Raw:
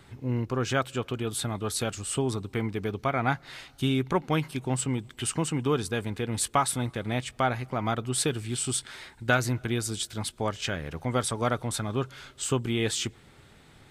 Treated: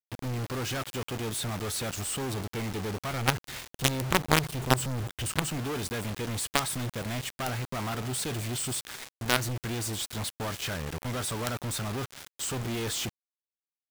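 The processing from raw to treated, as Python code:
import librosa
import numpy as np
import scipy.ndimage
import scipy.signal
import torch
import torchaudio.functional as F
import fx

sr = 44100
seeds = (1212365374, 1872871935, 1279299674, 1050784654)

y = fx.peak_eq(x, sr, hz=63.0, db=15.0, octaves=2.2, at=(3.13, 5.42))
y = fx.quant_companded(y, sr, bits=2)
y = y * librosa.db_to_amplitude(-6.0)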